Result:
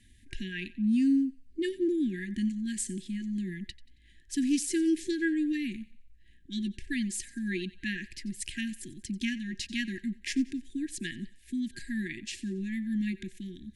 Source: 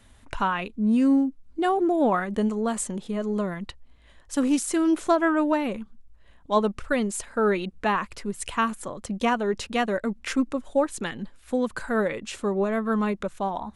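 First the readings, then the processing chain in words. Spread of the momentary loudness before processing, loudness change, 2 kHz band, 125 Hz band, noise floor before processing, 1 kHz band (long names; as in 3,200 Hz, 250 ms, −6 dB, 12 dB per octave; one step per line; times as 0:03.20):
10 LU, −7.0 dB, −6.5 dB, −4.5 dB, −54 dBFS, below −40 dB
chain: brick-wall band-stop 380–1,600 Hz
dynamic equaliser 4,800 Hz, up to +5 dB, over −52 dBFS, Q 1.7
feedback echo with a high-pass in the loop 91 ms, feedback 43%, high-pass 840 Hz, level −18 dB
level −4.5 dB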